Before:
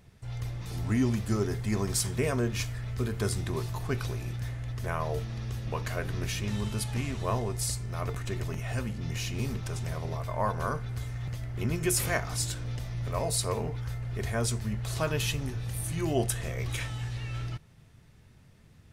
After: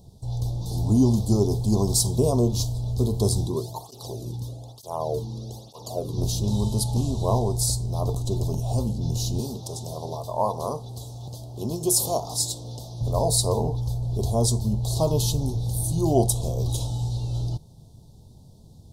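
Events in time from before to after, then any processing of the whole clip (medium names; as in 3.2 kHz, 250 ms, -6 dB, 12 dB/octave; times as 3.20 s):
3.46–6.18 s: cancelling through-zero flanger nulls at 1.1 Hz, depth 1.7 ms
9.40–13.01 s: high-pass 350 Hz 6 dB/octave
whole clip: elliptic band-stop 860–3900 Hz, stop band 80 dB; dynamic bell 1.1 kHz, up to +5 dB, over -51 dBFS, Q 1.9; trim +8 dB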